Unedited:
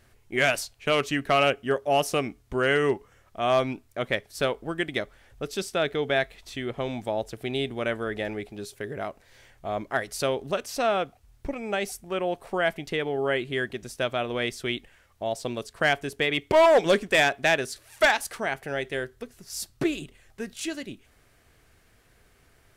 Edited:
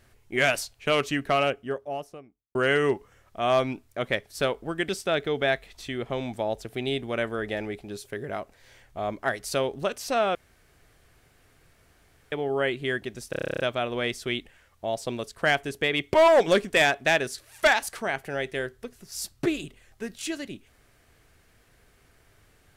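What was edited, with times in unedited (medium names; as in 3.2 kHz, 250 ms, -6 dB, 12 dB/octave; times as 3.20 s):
1.00–2.55 s: studio fade out
4.89–5.57 s: delete
11.03–13.00 s: room tone
13.98 s: stutter 0.03 s, 11 plays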